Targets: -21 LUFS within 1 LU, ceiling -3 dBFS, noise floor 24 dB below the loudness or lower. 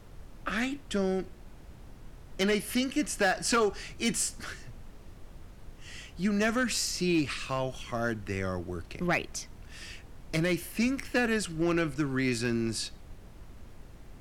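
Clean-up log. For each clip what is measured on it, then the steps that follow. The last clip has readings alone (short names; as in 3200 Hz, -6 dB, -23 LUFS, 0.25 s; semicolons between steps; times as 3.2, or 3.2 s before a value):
clipped 0.5%; flat tops at -20.0 dBFS; noise floor -50 dBFS; noise floor target -54 dBFS; loudness -30.0 LUFS; peak -20.0 dBFS; loudness target -21.0 LUFS
-> clip repair -20 dBFS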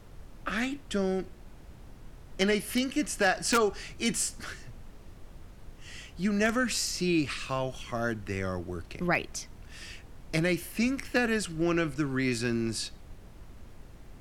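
clipped 0.0%; noise floor -50 dBFS; noise floor target -54 dBFS
-> noise print and reduce 6 dB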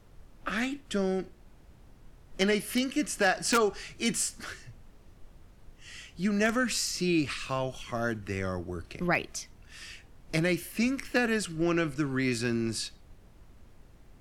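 noise floor -56 dBFS; loudness -30.0 LUFS; peak -11.0 dBFS; loudness target -21.0 LUFS
-> gain +9 dB; limiter -3 dBFS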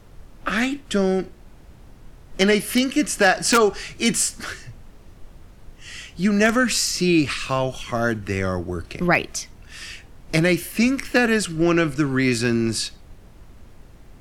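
loudness -21.0 LUFS; peak -3.0 dBFS; noise floor -47 dBFS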